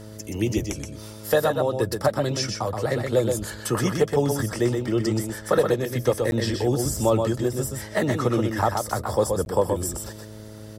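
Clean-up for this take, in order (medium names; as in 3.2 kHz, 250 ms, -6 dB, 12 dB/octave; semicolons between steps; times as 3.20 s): de-hum 107.1 Hz, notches 6; interpolate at 6.31/9.45 s, 11 ms; inverse comb 125 ms -5 dB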